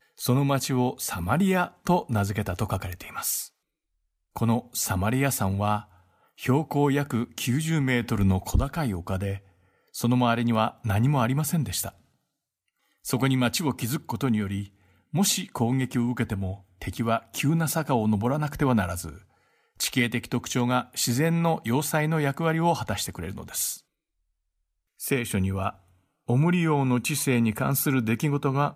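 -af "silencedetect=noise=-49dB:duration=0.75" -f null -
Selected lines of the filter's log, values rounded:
silence_start: 3.48
silence_end: 4.36 | silence_duration: 0.88
silence_start: 11.98
silence_end: 13.04 | silence_duration: 1.06
silence_start: 23.80
silence_end: 25.00 | silence_duration: 1.19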